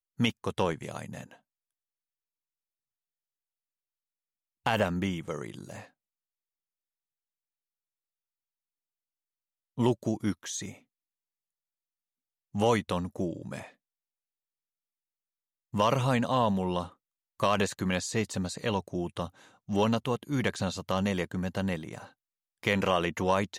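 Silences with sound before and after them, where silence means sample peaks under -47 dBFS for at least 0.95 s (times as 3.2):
1.35–4.66
5.86–9.78
10.78–12.55
13.7–15.74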